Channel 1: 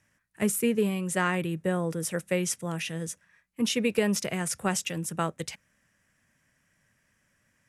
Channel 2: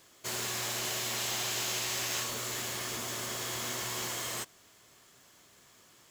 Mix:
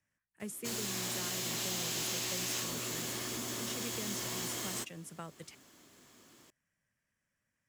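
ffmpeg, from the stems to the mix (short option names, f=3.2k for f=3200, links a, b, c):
-filter_complex "[0:a]volume=-14.5dB[a];[1:a]equalizer=f=270:t=o:w=0.98:g=10.5,adelay=400,volume=-2dB[b];[a][b]amix=inputs=2:normalize=0,acrossover=split=170|3000[c][d][e];[d]acompressor=threshold=-40dB:ratio=6[f];[c][f][e]amix=inputs=3:normalize=0"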